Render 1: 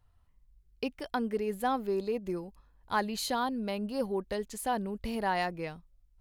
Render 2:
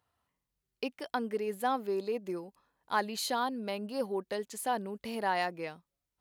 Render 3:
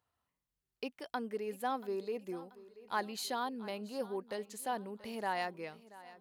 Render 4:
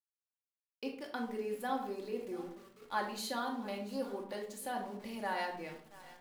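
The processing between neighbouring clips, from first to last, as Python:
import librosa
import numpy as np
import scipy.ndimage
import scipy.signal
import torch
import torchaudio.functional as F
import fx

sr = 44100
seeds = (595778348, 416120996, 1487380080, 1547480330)

y1 = scipy.signal.sosfilt(scipy.signal.bessel(2, 270.0, 'highpass', norm='mag', fs=sr, output='sos'), x)
y2 = fx.echo_feedback(y1, sr, ms=683, feedback_pct=46, wet_db=-18.5)
y2 = y2 * librosa.db_to_amplitude(-5.0)
y3 = np.where(np.abs(y2) >= 10.0 ** (-53.0 / 20.0), y2, 0.0)
y3 = fx.room_shoebox(y3, sr, seeds[0], volume_m3=880.0, walls='furnished', distance_m=2.4)
y3 = y3 * librosa.db_to_amplitude(-3.0)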